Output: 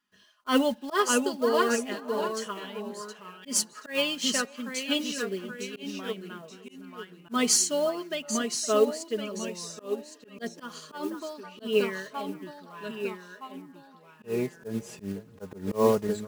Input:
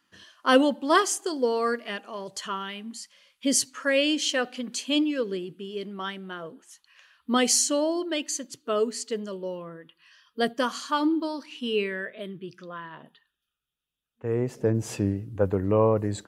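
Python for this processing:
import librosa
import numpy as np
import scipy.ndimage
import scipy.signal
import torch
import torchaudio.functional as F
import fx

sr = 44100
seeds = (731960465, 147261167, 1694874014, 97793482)

y = fx.block_float(x, sr, bits=5)
y = fx.echo_pitch(y, sr, ms=578, semitones=-1, count=2, db_per_echo=-6.0)
y = y + 0.6 * np.pad(y, (int(4.8 * sr / 1000.0), 0))[:len(y)]
y = fx.echo_wet_bandpass(y, sr, ms=514, feedback_pct=42, hz=980.0, wet_db=-13.0)
y = fx.auto_swell(y, sr, attack_ms=124.0)
y = fx.upward_expand(y, sr, threshold_db=-38.0, expansion=1.5)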